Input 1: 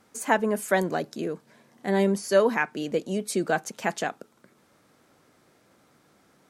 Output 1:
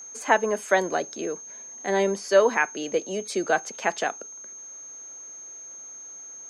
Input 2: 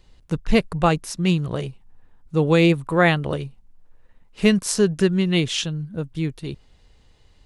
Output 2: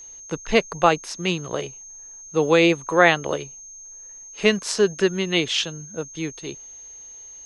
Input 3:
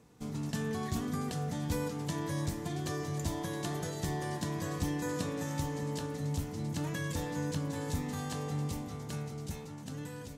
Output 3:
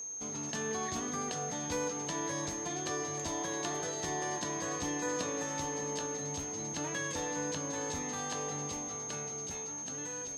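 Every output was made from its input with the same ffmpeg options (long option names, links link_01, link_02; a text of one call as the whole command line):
ffmpeg -i in.wav -filter_complex "[0:a]acrossover=split=310 6700:gain=0.178 1 0.112[link_01][link_02][link_03];[link_01][link_02][link_03]amix=inputs=3:normalize=0,aeval=exprs='val(0)+0.00794*sin(2*PI*6400*n/s)':channel_layout=same,volume=3dB" out.wav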